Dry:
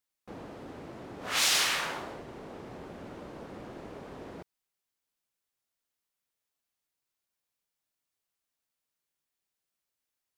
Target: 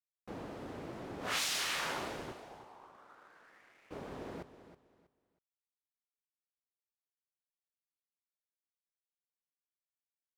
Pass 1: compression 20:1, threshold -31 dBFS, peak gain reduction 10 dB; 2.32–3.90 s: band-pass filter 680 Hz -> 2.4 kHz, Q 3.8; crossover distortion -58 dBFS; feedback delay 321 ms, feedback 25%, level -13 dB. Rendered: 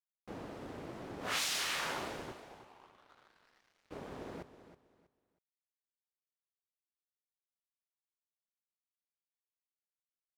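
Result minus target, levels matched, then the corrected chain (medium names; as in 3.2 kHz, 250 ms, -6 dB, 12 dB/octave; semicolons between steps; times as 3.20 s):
crossover distortion: distortion +11 dB
compression 20:1, threshold -31 dBFS, peak gain reduction 10 dB; 2.32–3.90 s: band-pass filter 680 Hz -> 2.4 kHz, Q 3.8; crossover distortion -69.5 dBFS; feedback delay 321 ms, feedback 25%, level -13 dB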